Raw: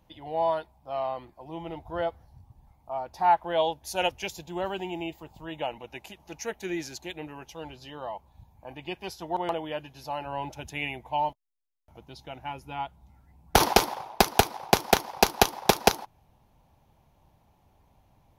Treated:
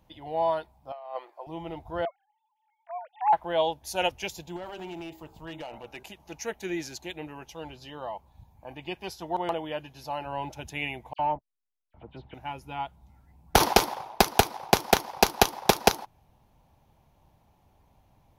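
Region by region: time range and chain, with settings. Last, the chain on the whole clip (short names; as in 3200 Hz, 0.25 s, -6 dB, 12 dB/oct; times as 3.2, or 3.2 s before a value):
0.92–1.47 inverse Chebyshev high-pass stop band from 220 Hz + high shelf 3800 Hz -10.5 dB + negative-ratio compressor -36 dBFS, ratio -0.5
2.05–3.33 sine-wave speech + tilt shelf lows -8 dB, about 1100 Hz
4.56–6.03 de-hum 64.26 Hz, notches 25 + compressor 10:1, threshold -33 dBFS + overloaded stage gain 33.5 dB
11.13–12.34 sample leveller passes 1 + air absorption 480 m + dispersion lows, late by 62 ms, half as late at 2900 Hz
whole clip: dry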